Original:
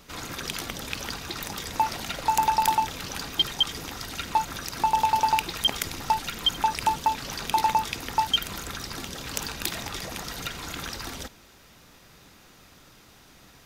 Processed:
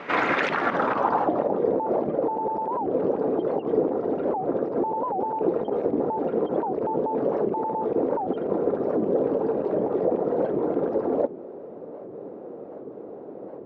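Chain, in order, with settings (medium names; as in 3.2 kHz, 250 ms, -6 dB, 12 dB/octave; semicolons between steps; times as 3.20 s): high-pass 200 Hz 12 dB/octave; peaking EQ 570 Hz +13 dB 2.9 oct; peak limiter -21 dBFS, peak gain reduction 19 dB; low-pass sweep 2.1 kHz -> 470 Hz, 0.48–1.61 s; warped record 78 rpm, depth 250 cents; trim +6.5 dB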